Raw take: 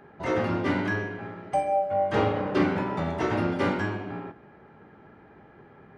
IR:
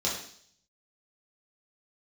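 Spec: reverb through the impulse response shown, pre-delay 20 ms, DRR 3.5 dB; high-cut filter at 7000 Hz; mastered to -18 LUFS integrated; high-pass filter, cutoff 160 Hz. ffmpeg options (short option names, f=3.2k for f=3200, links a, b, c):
-filter_complex "[0:a]highpass=160,lowpass=7k,asplit=2[a][b];[1:a]atrim=start_sample=2205,adelay=20[c];[b][c]afir=irnorm=-1:irlink=0,volume=-11.5dB[d];[a][d]amix=inputs=2:normalize=0,volume=7dB"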